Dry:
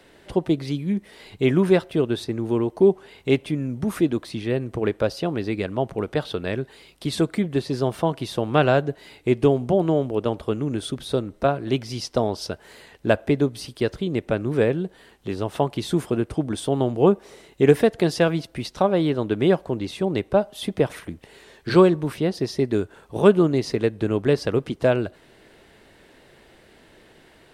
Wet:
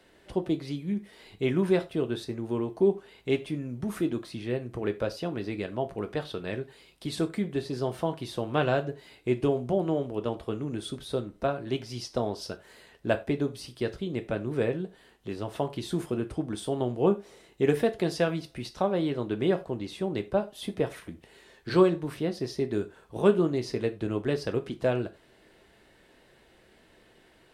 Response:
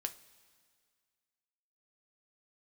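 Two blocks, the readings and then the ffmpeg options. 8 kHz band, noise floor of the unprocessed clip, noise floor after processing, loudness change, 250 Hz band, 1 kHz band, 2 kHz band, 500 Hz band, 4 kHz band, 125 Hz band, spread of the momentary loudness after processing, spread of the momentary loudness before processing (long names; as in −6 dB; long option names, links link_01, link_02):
−7.0 dB, −54 dBFS, −60 dBFS, −7.0 dB, −7.0 dB, −7.0 dB, −7.0 dB, −7.0 dB, −6.5 dB, −7.5 dB, 10 LU, 10 LU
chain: -filter_complex "[1:a]atrim=start_sample=2205,afade=type=out:start_time=0.15:duration=0.01,atrim=end_sample=7056[link_01];[0:a][link_01]afir=irnorm=-1:irlink=0,volume=-6dB"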